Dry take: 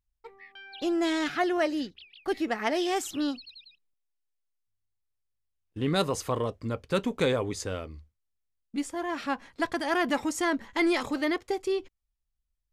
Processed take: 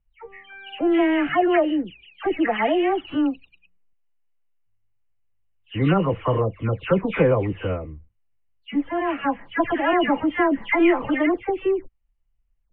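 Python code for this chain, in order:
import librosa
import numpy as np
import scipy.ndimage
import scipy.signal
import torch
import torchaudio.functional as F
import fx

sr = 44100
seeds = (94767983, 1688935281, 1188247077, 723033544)

y = fx.spec_delay(x, sr, highs='early', ms=274)
y = scipy.signal.sosfilt(scipy.signal.cheby1(6, 3, 3000.0, 'lowpass', fs=sr, output='sos'), y)
y = fx.low_shelf(y, sr, hz=170.0, db=8.5)
y = y * librosa.db_to_amplitude(8.5)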